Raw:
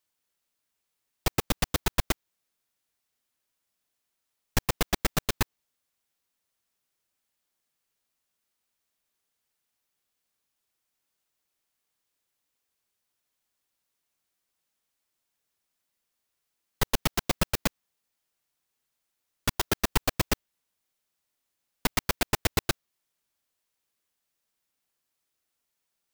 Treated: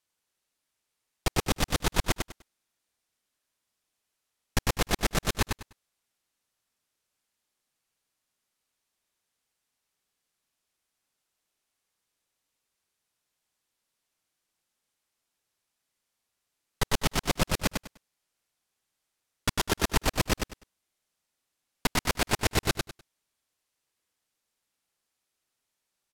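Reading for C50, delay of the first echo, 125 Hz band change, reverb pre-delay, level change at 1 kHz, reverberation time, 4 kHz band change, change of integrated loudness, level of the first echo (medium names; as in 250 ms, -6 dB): no reverb, 100 ms, +1.0 dB, no reverb, +1.0 dB, no reverb, +1.0 dB, 0.0 dB, -5.0 dB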